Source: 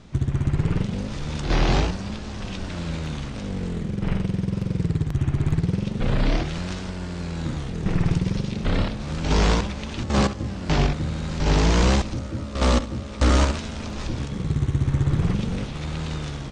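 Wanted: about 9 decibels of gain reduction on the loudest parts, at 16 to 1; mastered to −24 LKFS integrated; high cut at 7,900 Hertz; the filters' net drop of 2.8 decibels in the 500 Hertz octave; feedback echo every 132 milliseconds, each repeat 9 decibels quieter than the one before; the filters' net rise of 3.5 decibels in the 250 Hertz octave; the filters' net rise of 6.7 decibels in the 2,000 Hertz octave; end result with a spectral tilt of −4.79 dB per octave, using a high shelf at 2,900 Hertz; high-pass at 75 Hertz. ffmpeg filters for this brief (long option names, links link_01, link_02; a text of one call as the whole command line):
ffmpeg -i in.wav -af "highpass=75,lowpass=7900,equalizer=frequency=250:width_type=o:gain=6.5,equalizer=frequency=500:width_type=o:gain=-6.5,equalizer=frequency=2000:width_type=o:gain=5.5,highshelf=frequency=2900:gain=8,acompressor=threshold=-23dB:ratio=16,aecho=1:1:132|264|396|528:0.355|0.124|0.0435|0.0152,volume=4dB" out.wav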